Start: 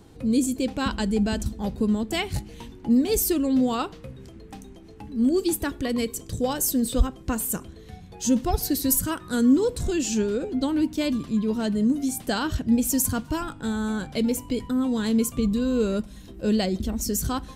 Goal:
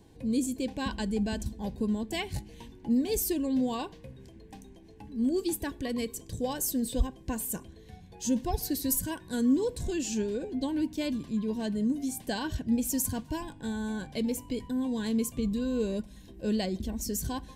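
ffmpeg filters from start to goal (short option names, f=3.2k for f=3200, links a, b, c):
-af "asuperstop=centerf=1300:order=20:qfactor=4.6,volume=-6.5dB"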